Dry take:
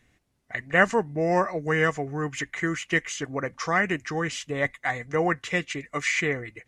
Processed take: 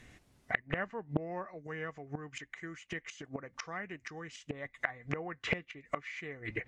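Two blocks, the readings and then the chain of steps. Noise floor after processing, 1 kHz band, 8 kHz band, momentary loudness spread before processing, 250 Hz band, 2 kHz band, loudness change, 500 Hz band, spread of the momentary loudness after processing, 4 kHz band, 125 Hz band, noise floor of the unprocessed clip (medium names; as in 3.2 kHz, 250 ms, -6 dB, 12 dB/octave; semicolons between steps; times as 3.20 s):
-70 dBFS, -15.0 dB, -17.5 dB, 8 LU, -12.5 dB, -13.0 dB, -13.5 dB, -15.0 dB, 9 LU, -12.0 dB, -11.0 dB, -69 dBFS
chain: inverted gate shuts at -24 dBFS, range -25 dB; low-pass that closes with the level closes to 2.4 kHz, closed at -42 dBFS; loudspeaker Doppler distortion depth 0.38 ms; trim +7.5 dB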